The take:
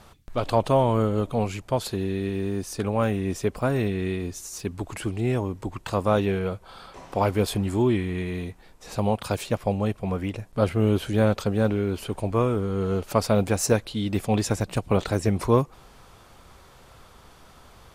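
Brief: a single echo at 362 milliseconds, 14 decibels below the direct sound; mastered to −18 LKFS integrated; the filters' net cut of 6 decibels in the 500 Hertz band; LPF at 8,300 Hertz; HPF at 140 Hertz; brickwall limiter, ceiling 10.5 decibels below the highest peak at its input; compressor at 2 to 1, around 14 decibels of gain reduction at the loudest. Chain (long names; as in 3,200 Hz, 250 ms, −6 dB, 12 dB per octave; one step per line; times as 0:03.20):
high-pass filter 140 Hz
low-pass filter 8,300 Hz
parametric band 500 Hz −7.5 dB
downward compressor 2 to 1, threshold −46 dBFS
brickwall limiter −31.5 dBFS
single-tap delay 362 ms −14 dB
level +25.5 dB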